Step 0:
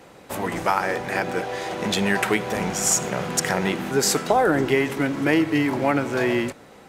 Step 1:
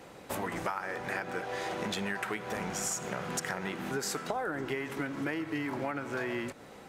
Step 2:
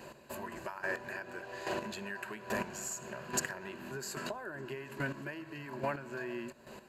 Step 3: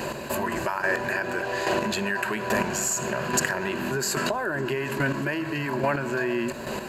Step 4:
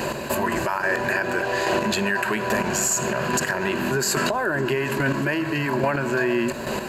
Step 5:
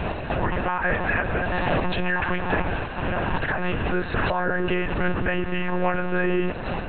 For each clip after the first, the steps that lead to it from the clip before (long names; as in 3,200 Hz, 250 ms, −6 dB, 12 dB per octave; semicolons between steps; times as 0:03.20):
dynamic equaliser 1,400 Hz, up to +6 dB, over −35 dBFS, Q 1.3; downward compressor 6 to 1, threshold −29 dBFS, peak gain reduction 16 dB; level −3 dB
EQ curve with evenly spaced ripples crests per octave 1.4, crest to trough 11 dB; square-wave tremolo 1.2 Hz, depth 65%, duty 15%
envelope flattener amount 50%; level +8.5 dB
brickwall limiter −16 dBFS, peak gain reduction 8 dB; level +4.5 dB
one-pitch LPC vocoder at 8 kHz 180 Hz